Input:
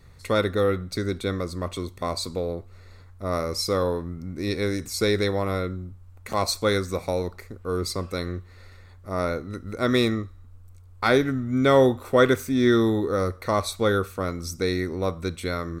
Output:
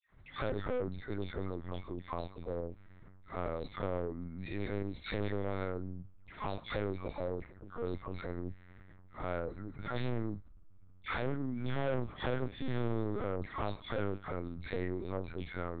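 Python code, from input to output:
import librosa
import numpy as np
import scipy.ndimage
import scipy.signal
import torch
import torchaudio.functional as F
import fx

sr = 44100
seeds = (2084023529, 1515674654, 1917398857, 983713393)

y = fx.hpss(x, sr, part='percussive', gain_db=-5)
y = fx.dispersion(y, sr, late='lows', ms=128.0, hz=1200.0)
y = fx.env_lowpass(y, sr, base_hz=2200.0, full_db=-19.5)
y = 10.0 ** (-23.5 / 20.0) * np.tanh(y / 10.0 ** (-23.5 / 20.0))
y = fx.lpc_vocoder(y, sr, seeds[0], excitation='pitch_kept', order=8)
y = F.gain(torch.from_numpy(y), -7.0).numpy()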